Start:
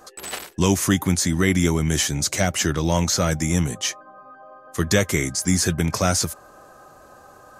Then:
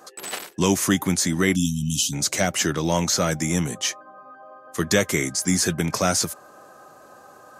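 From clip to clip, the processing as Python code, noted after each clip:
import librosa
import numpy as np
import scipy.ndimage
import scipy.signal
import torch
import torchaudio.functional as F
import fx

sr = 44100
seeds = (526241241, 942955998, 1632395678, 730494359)

y = scipy.signal.sosfilt(scipy.signal.butter(2, 150.0, 'highpass', fs=sr, output='sos'), x)
y = fx.spec_erase(y, sr, start_s=1.55, length_s=0.58, low_hz=280.0, high_hz=2500.0)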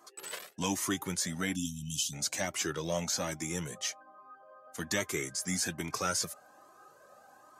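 y = fx.low_shelf(x, sr, hz=150.0, db=-8.5)
y = fx.comb_cascade(y, sr, direction='rising', hz=1.2)
y = F.gain(torch.from_numpy(y), -5.5).numpy()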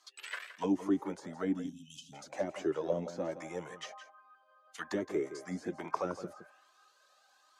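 y = fx.auto_wah(x, sr, base_hz=310.0, top_hz=4300.0, q=2.3, full_db=-28.5, direction='down')
y = y + 10.0 ** (-12.5 / 20.0) * np.pad(y, (int(167 * sr / 1000.0), 0))[:len(y)]
y = F.gain(torch.from_numpy(y), 7.0).numpy()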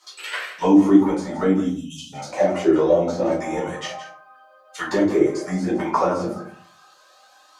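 y = fx.room_shoebox(x, sr, seeds[0], volume_m3=240.0, walls='furnished', distance_m=4.5)
y = F.gain(torch.from_numpy(y), 6.5).numpy()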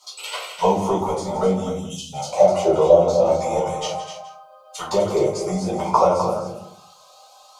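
y = fx.fixed_phaser(x, sr, hz=710.0, stages=4)
y = y + 10.0 ** (-8.5 / 20.0) * np.pad(y, (int(254 * sr / 1000.0), 0))[:len(y)]
y = F.gain(torch.from_numpy(y), 6.0).numpy()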